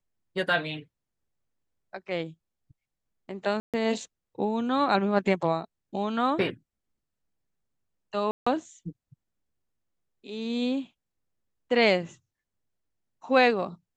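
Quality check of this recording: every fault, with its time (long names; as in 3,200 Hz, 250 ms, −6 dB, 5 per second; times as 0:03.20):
0:03.60–0:03.74: drop-out 137 ms
0:08.31–0:08.46: drop-out 155 ms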